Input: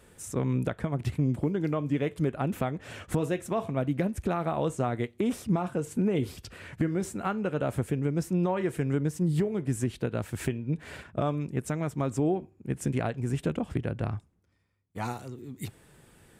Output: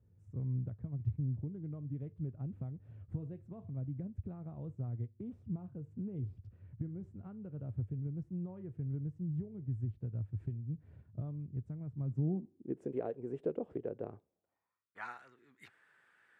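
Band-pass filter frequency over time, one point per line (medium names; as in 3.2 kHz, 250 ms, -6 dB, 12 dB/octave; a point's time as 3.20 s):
band-pass filter, Q 3.2
11.95 s 100 Hz
12.87 s 440 Hz
14.17 s 440 Hz
15.01 s 1.6 kHz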